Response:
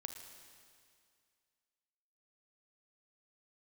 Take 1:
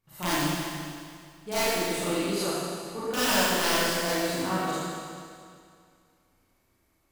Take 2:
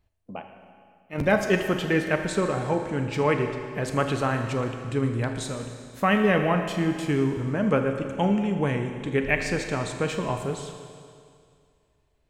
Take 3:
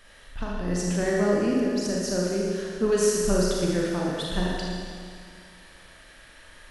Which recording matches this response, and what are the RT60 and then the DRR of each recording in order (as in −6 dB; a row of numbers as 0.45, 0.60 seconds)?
2; 2.2, 2.2, 2.2 seconds; −12.5, 5.0, −4.0 decibels